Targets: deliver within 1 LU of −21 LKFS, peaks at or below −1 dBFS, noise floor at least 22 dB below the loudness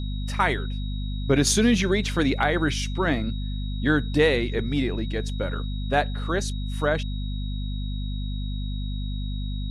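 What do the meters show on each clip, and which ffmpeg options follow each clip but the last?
mains hum 50 Hz; hum harmonics up to 250 Hz; level of the hum −26 dBFS; interfering tone 3,800 Hz; level of the tone −42 dBFS; integrated loudness −25.5 LKFS; sample peak −8.5 dBFS; target loudness −21.0 LKFS
→ -af "bandreject=frequency=50:width_type=h:width=6,bandreject=frequency=100:width_type=h:width=6,bandreject=frequency=150:width_type=h:width=6,bandreject=frequency=200:width_type=h:width=6,bandreject=frequency=250:width_type=h:width=6"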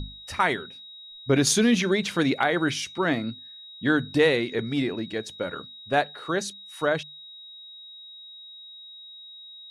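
mains hum none found; interfering tone 3,800 Hz; level of the tone −42 dBFS
→ -af "bandreject=frequency=3800:width=30"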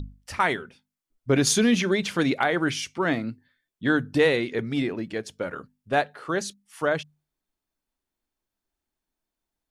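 interfering tone none found; integrated loudness −25.0 LKFS; sample peak −9.5 dBFS; target loudness −21.0 LKFS
→ -af "volume=4dB"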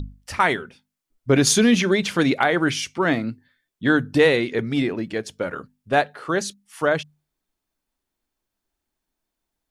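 integrated loudness −21.0 LKFS; sample peak −5.5 dBFS; background noise floor −83 dBFS

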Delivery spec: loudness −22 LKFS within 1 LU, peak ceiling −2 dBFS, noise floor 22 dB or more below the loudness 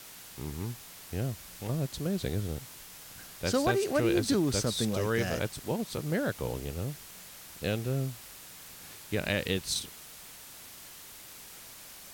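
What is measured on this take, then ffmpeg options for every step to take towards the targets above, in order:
background noise floor −49 dBFS; target noise floor −54 dBFS; integrated loudness −32.0 LKFS; sample peak −13.5 dBFS; target loudness −22.0 LKFS
→ -af "afftdn=noise_reduction=6:noise_floor=-49"
-af "volume=10dB"

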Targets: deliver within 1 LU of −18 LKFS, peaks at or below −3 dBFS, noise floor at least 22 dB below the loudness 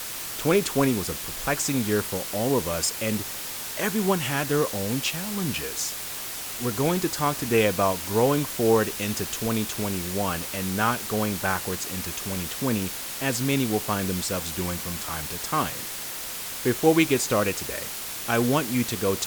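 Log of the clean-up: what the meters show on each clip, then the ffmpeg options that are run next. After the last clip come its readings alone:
background noise floor −34 dBFS; target noise floor −48 dBFS; integrated loudness −25.5 LKFS; sample peak −6.5 dBFS; target loudness −18.0 LKFS
→ -af "afftdn=noise_reduction=14:noise_floor=-34"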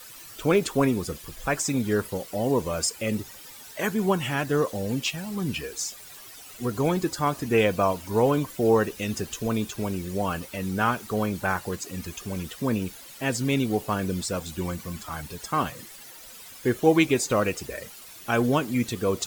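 background noise floor −45 dBFS; target noise floor −49 dBFS
→ -af "afftdn=noise_reduction=6:noise_floor=-45"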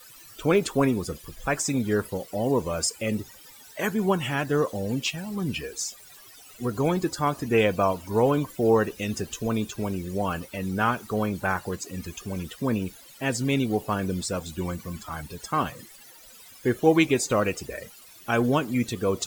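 background noise floor −49 dBFS; integrated loudness −26.5 LKFS; sample peak −6.5 dBFS; target loudness −18.0 LKFS
→ -af "volume=8.5dB,alimiter=limit=-3dB:level=0:latency=1"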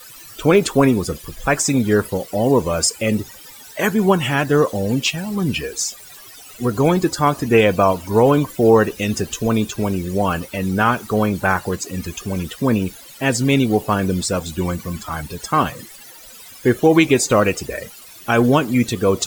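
integrated loudness −18.5 LKFS; sample peak −3.0 dBFS; background noise floor −41 dBFS

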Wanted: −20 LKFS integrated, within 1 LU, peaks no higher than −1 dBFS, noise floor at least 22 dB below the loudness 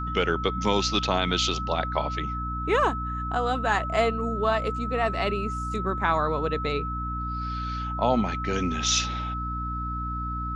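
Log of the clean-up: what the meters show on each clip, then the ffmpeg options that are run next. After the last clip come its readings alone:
mains hum 60 Hz; hum harmonics up to 300 Hz; level of the hum −30 dBFS; interfering tone 1,300 Hz; level of the tone −31 dBFS; integrated loudness −26.5 LKFS; sample peak −9.5 dBFS; target loudness −20.0 LKFS
→ -af "bandreject=frequency=60:width_type=h:width=4,bandreject=frequency=120:width_type=h:width=4,bandreject=frequency=180:width_type=h:width=4,bandreject=frequency=240:width_type=h:width=4,bandreject=frequency=300:width_type=h:width=4"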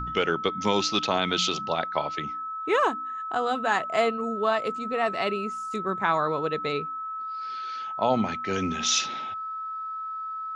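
mains hum none found; interfering tone 1,300 Hz; level of the tone −31 dBFS
→ -af "bandreject=frequency=1300:width=30"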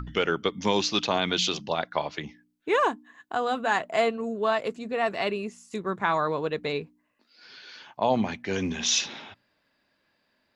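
interfering tone none found; integrated loudness −27.0 LKFS; sample peak −9.5 dBFS; target loudness −20.0 LKFS
→ -af "volume=7dB"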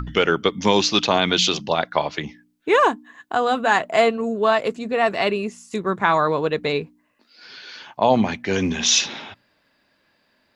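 integrated loudness −20.0 LKFS; sample peak −2.5 dBFS; background noise floor −66 dBFS

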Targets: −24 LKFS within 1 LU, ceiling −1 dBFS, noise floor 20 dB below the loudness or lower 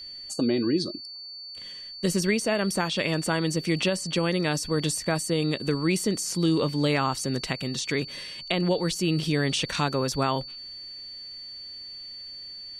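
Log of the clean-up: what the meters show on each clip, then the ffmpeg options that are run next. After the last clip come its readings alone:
interfering tone 4,500 Hz; level of the tone −38 dBFS; integrated loudness −26.5 LKFS; sample peak −10.0 dBFS; target loudness −24.0 LKFS
→ -af "bandreject=frequency=4500:width=30"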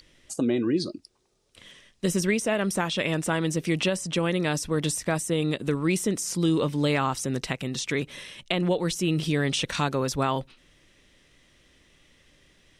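interfering tone none found; integrated loudness −26.5 LKFS; sample peak −10.5 dBFS; target loudness −24.0 LKFS
→ -af "volume=2.5dB"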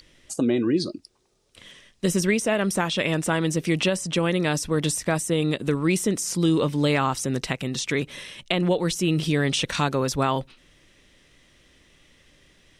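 integrated loudness −24.0 LKFS; sample peak −8.0 dBFS; background noise floor −59 dBFS

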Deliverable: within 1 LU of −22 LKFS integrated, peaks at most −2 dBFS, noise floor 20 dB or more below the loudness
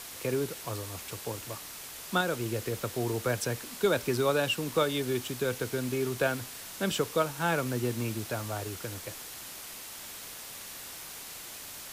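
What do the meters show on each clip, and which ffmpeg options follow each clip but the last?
background noise floor −44 dBFS; target noise floor −53 dBFS; integrated loudness −32.5 LKFS; sample peak −15.0 dBFS; target loudness −22.0 LKFS
→ -af "afftdn=noise_reduction=9:noise_floor=-44"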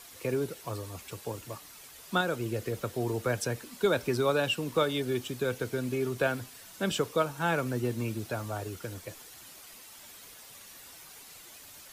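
background noise floor −51 dBFS; target noise floor −52 dBFS
→ -af "afftdn=noise_reduction=6:noise_floor=-51"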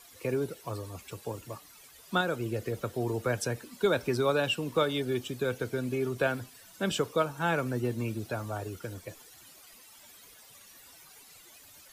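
background noise floor −55 dBFS; integrated loudness −31.5 LKFS; sample peak −15.5 dBFS; target loudness −22.0 LKFS
→ -af "volume=9.5dB"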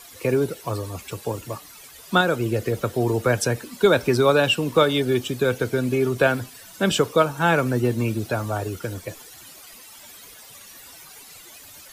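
integrated loudness −22.0 LKFS; sample peak −6.0 dBFS; background noise floor −45 dBFS

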